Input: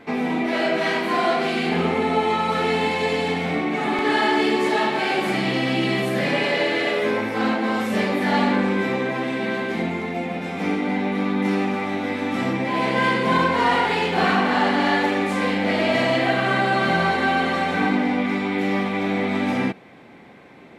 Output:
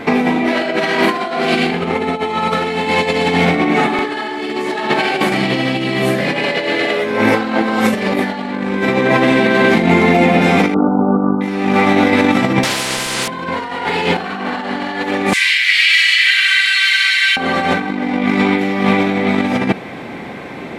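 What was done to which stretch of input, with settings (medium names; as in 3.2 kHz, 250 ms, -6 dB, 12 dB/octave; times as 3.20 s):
10.74–11.41 s: brick-wall FIR low-pass 1.5 kHz
12.63–13.28 s: spectrum-flattening compressor 4:1
15.33–17.37 s: steep high-pass 1.9 kHz
whole clip: compressor with a negative ratio -26 dBFS, ratio -0.5; loudness maximiser +13.5 dB; trim -1 dB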